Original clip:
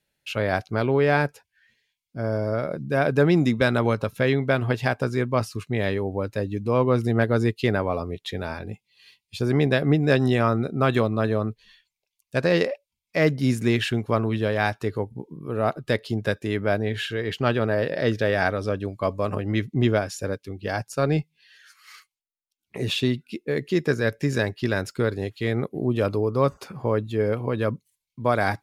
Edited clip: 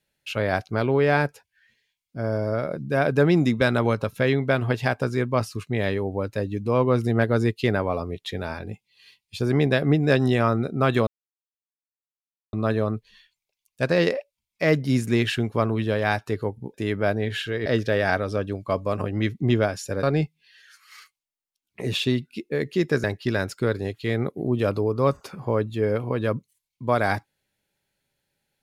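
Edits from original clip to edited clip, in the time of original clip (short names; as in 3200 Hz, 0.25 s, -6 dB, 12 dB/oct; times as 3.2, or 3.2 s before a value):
11.07 insert silence 1.46 s
15.28–16.38 cut
17.3–17.99 cut
20.36–20.99 cut
24–24.41 cut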